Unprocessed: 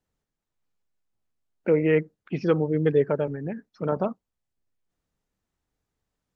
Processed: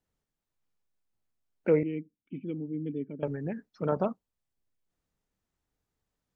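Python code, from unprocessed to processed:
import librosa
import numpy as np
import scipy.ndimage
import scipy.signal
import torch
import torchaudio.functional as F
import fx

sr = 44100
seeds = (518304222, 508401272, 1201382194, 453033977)

y = fx.formant_cascade(x, sr, vowel='i', at=(1.83, 3.23))
y = y * librosa.db_to_amplitude(-2.5)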